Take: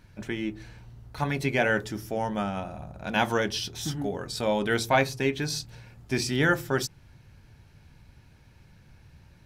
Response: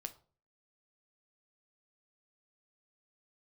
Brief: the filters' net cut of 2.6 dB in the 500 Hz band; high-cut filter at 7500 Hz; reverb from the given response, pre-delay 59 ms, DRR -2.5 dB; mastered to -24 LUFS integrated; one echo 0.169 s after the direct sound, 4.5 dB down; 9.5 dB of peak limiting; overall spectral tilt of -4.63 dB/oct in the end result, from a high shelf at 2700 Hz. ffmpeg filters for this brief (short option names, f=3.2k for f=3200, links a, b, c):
-filter_complex "[0:a]lowpass=7.5k,equalizer=f=500:t=o:g=-3,highshelf=f=2.7k:g=-6.5,alimiter=limit=-20.5dB:level=0:latency=1,aecho=1:1:169:0.596,asplit=2[a][b];[1:a]atrim=start_sample=2205,adelay=59[c];[b][c]afir=irnorm=-1:irlink=0,volume=5.5dB[d];[a][d]amix=inputs=2:normalize=0,volume=3.5dB"